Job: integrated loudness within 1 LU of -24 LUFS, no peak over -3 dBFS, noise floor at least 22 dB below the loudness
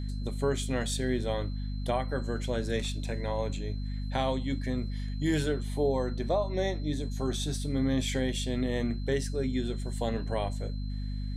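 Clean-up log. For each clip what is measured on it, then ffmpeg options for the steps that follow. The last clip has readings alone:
hum 50 Hz; highest harmonic 250 Hz; hum level -31 dBFS; steady tone 4.1 kHz; tone level -53 dBFS; loudness -31.5 LUFS; peak level -16.5 dBFS; loudness target -24.0 LUFS
-> -af "bandreject=f=50:t=h:w=6,bandreject=f=100:t=h:w=6,bandreject=f=150:t=h:w=6,bandreject=f=200:t=h:w=6,bandreject=f=250:t=h:w=6"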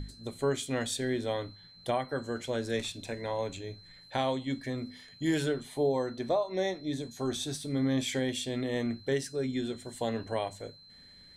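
hum not found; steady tone 4.1 kHz; tone level -53 dBFS
-> -af "bandreject=f=4100:w=30"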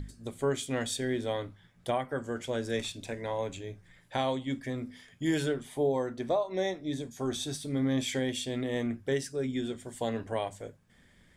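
steady tone not found; loudness -33.0 LUFS; peak level -18.5 dBFS; loudness target -24.0 LUFS
-> -af "volume=2.82"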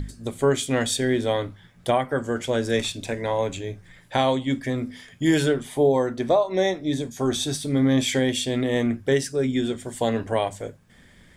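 loudness -24.0 LUFS; peak level -9.5 dBFS; noise floor -53 dBFS

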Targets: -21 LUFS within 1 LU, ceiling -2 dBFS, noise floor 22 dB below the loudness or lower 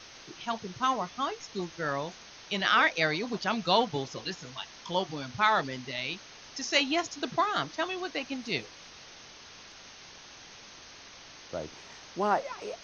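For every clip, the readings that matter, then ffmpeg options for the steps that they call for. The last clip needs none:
noise floor -50 dBFS; noise floor target -53 dBFS; loudness -30.5 LUFS; peak level -10.0 dBFS; loudness target -21.0 LUFS
-> -af "afftdn=nr=6:nf=-50"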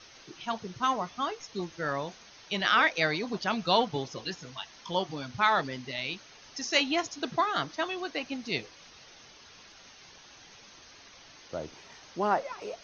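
noise floor -54 dBFS; loudness -30.5 LUFS; peak level -10.0 dBFS; loudness target -21.0 LUFS
-> -af "volume=2.99,alimiter=limit=0.794:level=0:latency=1"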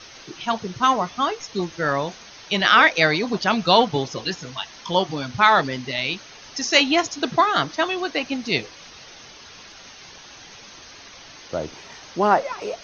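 loudness -21.0 LUFS; peak level -2.0 dBFS; noise floor -44 dBFS

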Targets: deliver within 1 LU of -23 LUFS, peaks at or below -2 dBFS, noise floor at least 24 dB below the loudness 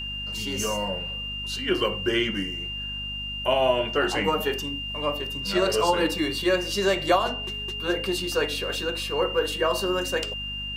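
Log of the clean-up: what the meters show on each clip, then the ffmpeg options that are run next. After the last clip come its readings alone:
hum 50 Hz; highest harmonic 250 Hz; hum level -37 dBFS; steady tone 2.8 kHz; tone level -31 dBFS; loudness -25.5 LUFS; peak level -9.0 dBFS; loudness target -23.0 LUFS
-> -af "bandreject=f=50:t=h:w=6,bandreject=f=100:t=h:w=6,bandreject=f=150:t=h:w=6,bandreject=f=200:t=h:w=6,bandreject=f=250:t=h:w=6"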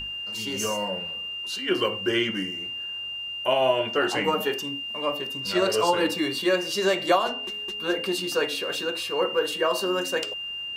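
hum not found; steady tone 2.8 kHz; tone level -31 dBFS
-> -af "bandreject=f=2800:w=30"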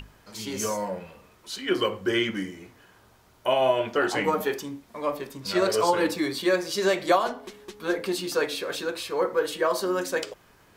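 steady tone not found; loudness -26.5 LUFS; peak level -9.0 dBFS; loudness target -23.0 LUFS
-> -af "volume=1.5"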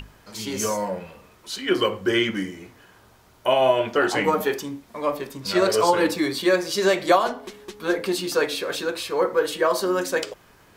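loudness -23.0 LUFS; peak level -5.5 dBFS; noise floor -54 dBFS

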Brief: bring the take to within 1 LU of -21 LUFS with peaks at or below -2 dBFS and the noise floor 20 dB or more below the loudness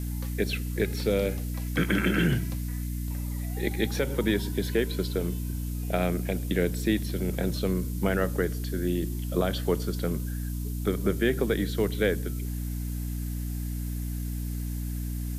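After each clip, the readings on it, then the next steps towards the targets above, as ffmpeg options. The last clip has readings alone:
hum 60 Hz; highest harmonic 300 Hz; hum level -29 dBFS; noise floor -32 dBFS; noise floor target -49 dBFS; loudness -29.0 LUFS; peak level -12.0 dBFS; loudness target -21.0 LUFS
-> -af "bandreject=f=60:t=h:w=6,bandreject=f=120:t=h:w=6,bandreject=f=180:t=h:w=6,bandreject=f=240:t=h:w=6,bandreject=f=300:t=h:w=6"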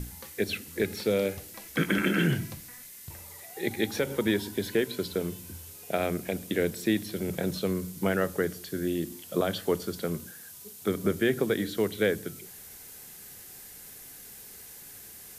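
hum not found; noise floor -47 dBFS; noise floor target -50 dBFS
-> -af "afftdn=nr=6:nf=-47"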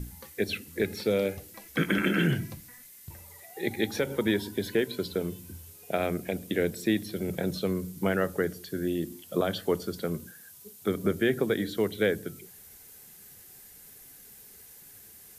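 noise floor -51 dBFS; loudness -30.0 LUFS; peak level -13.5 dBFS; loudness target -21.0 LUFS
-> -af "volume=2.82"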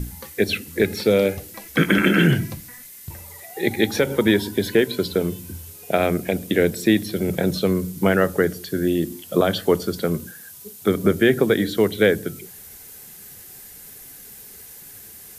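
loudness -21.0 LUFS; peak level -4.5 dBFS; noise floor -42 dBFS

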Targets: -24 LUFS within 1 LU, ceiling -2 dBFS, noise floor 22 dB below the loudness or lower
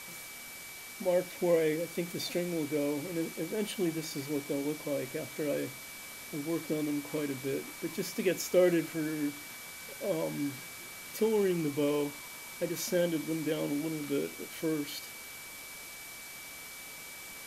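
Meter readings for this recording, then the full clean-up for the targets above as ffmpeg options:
steady tone 2.3 kHz; tone level -48 dBFS; noise floor -46 dBFS; noise floor target -56 dBFS; loudness -34.0 LUFS; peak level -15.0 dBFS; loudness target -24.0 LUFS
-> -af "bandreject=f=2300:w=30"
-af "afftdn=nr=10:nf=-46"
-af "volume=3.16"

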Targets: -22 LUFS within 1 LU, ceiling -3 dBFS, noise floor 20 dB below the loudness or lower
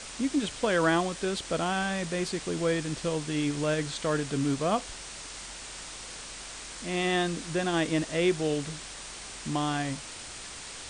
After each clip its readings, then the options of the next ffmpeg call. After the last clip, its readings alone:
noise floor -42 dBFS; noise floor target -51 dBFS; loudness -30.5 LUFS; peak level -14.0 dBFS; loudness target -22.0 LUFS
-> -af "afftdn=nr=9:nf=-42"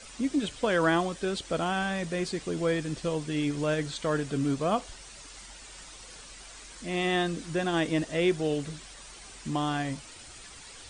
noise floor -48 dBFS; noise floor target -50 dBFS
-> -af "afftdn=nr=6:nf=-48"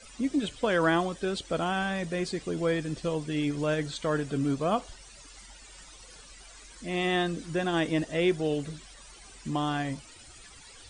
noise floor -51 dBFS; loudness -29.5 LUFS; peak level -14.5 dBFS; loudness target -22.0 LUFS
-> -af "volume=2.37"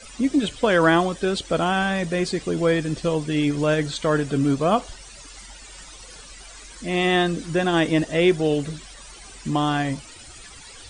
loudness -22.0 LUFS; peak level -7.0 dBFS; noise floor -43 dBFS

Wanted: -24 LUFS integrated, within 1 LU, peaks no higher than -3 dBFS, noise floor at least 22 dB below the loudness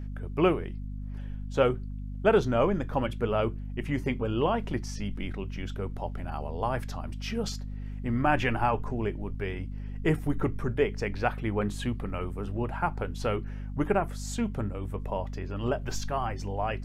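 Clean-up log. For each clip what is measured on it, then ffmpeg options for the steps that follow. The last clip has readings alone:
hum 50 Hz; highest harmonic 250 Hz; hum level -34 dBFS; loudness -30.5 LUFS; peak level -10.0 dBFS; loudness target -24.0 LUFS
-> -af "bandreject=f=50:t=h:w=6,bandreject=f=100:t=h:w=6,bandreject=f=150:t=h:w=6,bandreject=f=200:t=h:w=6,bandreject=f=250:t=h:w=6"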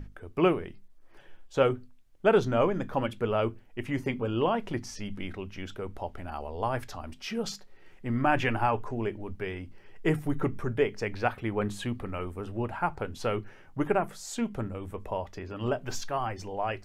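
hum not found; loudness -31.0 LUFS; peak level -10.5 dBFS; loudness target -24.0 LUFS
-> -af "volume=2.24"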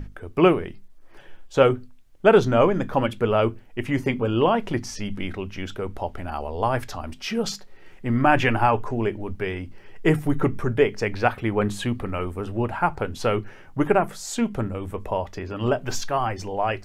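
loudness -24.0 LUFS; peak level -3.5 dBFS; noise floor -46 dBFS

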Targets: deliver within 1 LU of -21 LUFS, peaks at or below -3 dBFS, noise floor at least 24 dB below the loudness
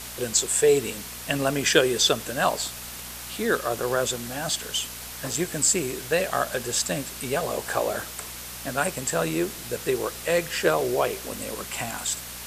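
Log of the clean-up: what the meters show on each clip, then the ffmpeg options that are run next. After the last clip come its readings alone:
hum 60 Hz; highest harmonic 240 Hz; hum level -45 dBFS; noise floor -38 dBFS; noise floor target -50 dBFS; loudness -25.5 LUFS; peak level -3.5 dBFS; loudness target -21.0 LUFS
-> -af "bandreject=f=60:t=h:w=4,bandreject=f=120:t=h:w=4,bandreject=f=180:t=h:w=4,bandreject=f=240:t=h:w=4"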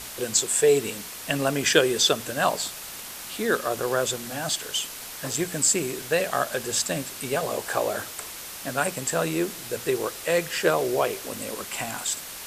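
hum not found; noise floor -39 dBFS; noise floor target -50 dBFS
-> -af "afftdn=nr=11:nf=-39"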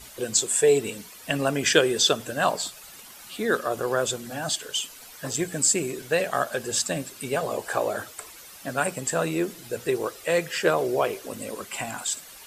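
noise floor -46 dBFS; noise floor target -50 dBFS
-> -af "afftdn=nr=6:nf=-46"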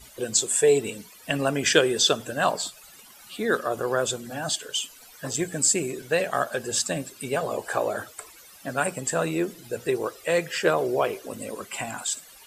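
noise floor -50 dBFS; loudness -25.5 LUFS; peak level -3.5 dBFS; loudness target -21.0 LUFS
-> -af "volume=1.68,alimiter=limit=0.708:level=0:latency=1"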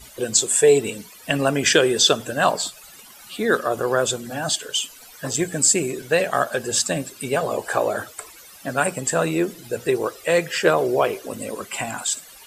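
loudness -21.0 LUFS; peak level -3.0 dBFS; noise floor -45 dBFS

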